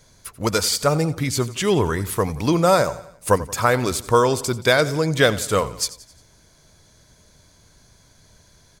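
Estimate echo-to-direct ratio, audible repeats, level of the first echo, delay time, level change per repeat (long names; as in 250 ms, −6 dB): −16.0 dB, 3, −17.0 dB, 88 ms, −6.0 dB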